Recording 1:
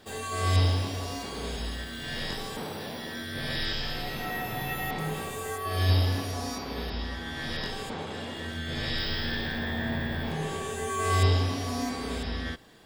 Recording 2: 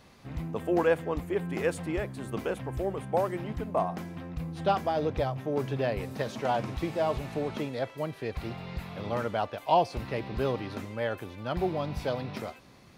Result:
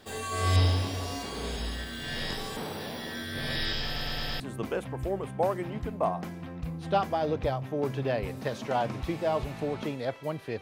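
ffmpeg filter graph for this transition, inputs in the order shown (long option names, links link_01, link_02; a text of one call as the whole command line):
ffmpeg -i cue0.wav -i cue1.wav -filter_complex "[0:a]apad=whole_dur=10.61,atrim=end=10.61,asplit=5[link_01][link_02][link_03][link_04][link_05];[link_01]atrim=end=3.962[link_06];[link_02]atrim=start=3.848:end=3.962[link_07];[link_03]atrim=start=3.848:end=3.962[link_08];[link_04]atrim=start=3.848:end=3.962[link_09];[link_05]atrim=start=3.848:end=3.962[link_10];[1:a]atrim=start=2.138:end=8.35[link_11];[link_06][link_07]acrossfade=duration=0.004:curve1=hsin:curve2=hsin[link_12];[link_12][link_08]acrossfade=duration=0.004:curve1=hsin:curve2=hsin[link_13];[link_13][link_09]acrossfade=duration=0.004:curve1=hsin:curve2=hsin[link_14];[link_14][link_10]acrossfade=duration=0.004:curve1=hsin:curve2=hsin[link_15];[link_15][link_11]acrossfade=duration=0.004:curve1=hsin:curve2=hsin" out.wav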